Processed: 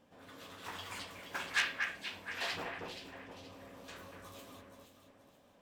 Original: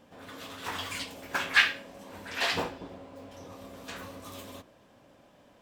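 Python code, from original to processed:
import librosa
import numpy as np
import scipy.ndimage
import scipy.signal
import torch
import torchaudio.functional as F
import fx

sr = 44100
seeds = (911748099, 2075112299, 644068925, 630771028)

p1 = x + fx.echo_alternate(x, sr, ms=238, hz=2400.0, feedback_pct=59, wet_db=-4, dry=0)
p2 = fx.transformer_sat(p1, sr, knee_hz=4000.0)
y = F.gain(torch.from_numpy(p2), -8.5).numpy()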